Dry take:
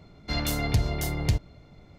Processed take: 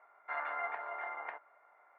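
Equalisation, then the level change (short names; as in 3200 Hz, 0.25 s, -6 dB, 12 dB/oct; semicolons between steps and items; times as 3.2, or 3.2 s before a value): HPF 850 Hz 24 dB/oct; steep low-pass 1800 Hz 36 dB/oct; +3.0 dB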